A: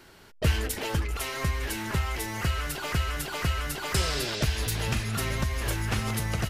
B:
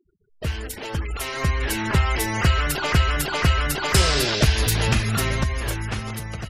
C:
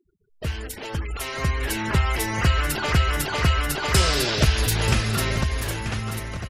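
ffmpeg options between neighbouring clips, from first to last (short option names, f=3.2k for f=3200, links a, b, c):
-af "afftfilt=real='re*gte(hypot(re,im),0.01)':imag='im*gte(hypot(re,im),0.01)':win_size=1024:overlap=0.75,dynaudnorm=f=300:g=9:m=15dB,volume=-3.5dB"
-af "aecho=1:1:935:0.299,volume=-1.5dB"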